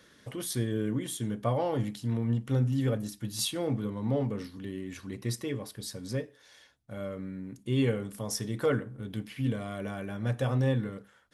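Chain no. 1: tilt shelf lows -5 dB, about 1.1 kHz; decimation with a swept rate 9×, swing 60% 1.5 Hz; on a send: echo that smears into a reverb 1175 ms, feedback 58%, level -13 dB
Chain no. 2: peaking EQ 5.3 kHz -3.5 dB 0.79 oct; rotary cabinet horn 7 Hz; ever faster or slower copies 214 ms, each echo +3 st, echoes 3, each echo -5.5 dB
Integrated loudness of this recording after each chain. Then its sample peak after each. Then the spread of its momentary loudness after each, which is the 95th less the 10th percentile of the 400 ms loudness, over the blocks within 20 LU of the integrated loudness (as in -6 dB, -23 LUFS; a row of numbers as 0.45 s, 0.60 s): -34.5 LUFS, -33.0 LUFS; -16.0 dBFS, -16.5 dBFS; 11 LU, 10 LU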